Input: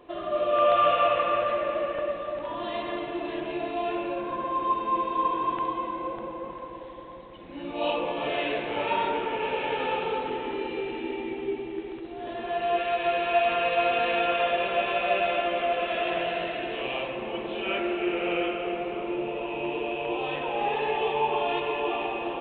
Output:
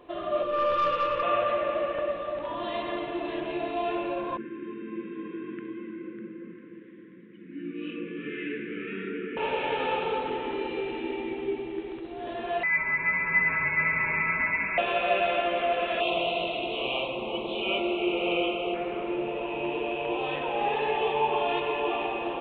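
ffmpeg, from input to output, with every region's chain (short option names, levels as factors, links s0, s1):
-filter_complex "[0:a]asettb=1/sr,asplit=3[s0][s1][s2];[s0]atrim=end=0.424[s3];[s1]atrim=start=0.42:end=1.23,asetpts=PTS-STARTPTS,afade=t=in:d=0.004:c=qsin,afade=t=out:st=0.806:d=0.004:c=qsin,asuperstop=centerf=730:order=8:qfactor=2.4,equalizer=f=2600:w=0.89:g=-5,aeval=exprs='(tanh(7.94*val(0)+0.25)-tanh(0.25))/7.94':c=same[s4];[s2]atrim=start=1.226[s5];[s3][s4]acrossfade=d=0.004:c1=hsin:c2=qsin[s6];[s6][s5]acrossfade=d=0.004:c1=qsin:c2=hsin,asettb=1/sr,asplit=3[s7][s8][s9];[s7]atrim=end=4.374[s10];[s8]atrim=start=4.37:end=9.37,asetpts=PTS-STARTPTS,afade=t=in:d=0.004:c=qsin,afade=t=out:st=4.996:d=0.004:c=qsin,asuperstop=centerf=760:order=8:qfactor=0.63,highpass=f=160:w=0.5412,highpass=f=160:w=1.3066,equalizer=f=200:t=q:w=4:g=8,equalizer=f=460:t=q:w=4:g=8,equalizer=f=940:t=q:w=4:g=6,lowpass=f=2100:w=0.5412,lowpass=f=2100:w=1.3066[s11];[s9]atrim=start=9.366[s12];[s10][s11]acrossfade=d=0.004:c1=hsin:c2=qsin[s13];[s13][s12]acrossfade=d=0.004:c1=qsin:c2=hsin,asettb=1/sr,asplit=3[s14][s15][s16];[s14]atrim=end=12.634[s17];[s15]atrim=start=12.63:end=14.78,asetpts=PTS-STARTPTS,afade=t=in:d=0.004:c=qsin,afade=t=out:st=2.146:d=0.004:c=qsin,asubboost=boost=5.5:cutoff=220,lowpass=f=2300:t=q:w=0.5098,lowpass=f=2300:t=q:w=0.6013,lowpass=f=2300:t=q:w=0.9,lowpass=f=2300:t=q:w=2.563,afreqshift=-2700[s18];[s16]atrim=start=14.776[s19];[s17][s18]acrossfade=d=0.004:c1=hsin:c2=qsin[s20];[s20][s19]acrossfade=d=0.004:c1=qsin:c2=hsin,asettb=1/sr,asplit=3[s21][s22][s23];[s21]atrim=end=16.004[s24];[s22]atrim=start=16:end=18.74,asetpts=PTS-STARTPTS,afade=t=in:d=0.004:c=qsin,afade=t=out:st=2.736:d=0.004:c=qsin,asuperstop=centerf=1700:order=4:qfactor=1.2,highshelf=f=2100:g=8.5[s25];[s23]atrim=start=18.736[s26];[s24][s25]acrossfade=d=0.004:c1=hsin:c2=qsin[s27];[s27][s26]acrossfade=d=0.004:c1=qsin:c2=hsin"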